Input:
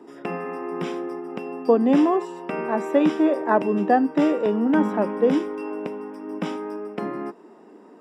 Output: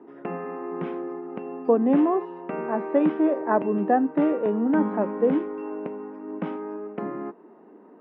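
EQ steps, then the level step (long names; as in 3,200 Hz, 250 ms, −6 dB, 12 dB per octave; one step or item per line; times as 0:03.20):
Bessel low-pass filter 1,700 Hz, order 4
−2.0 dB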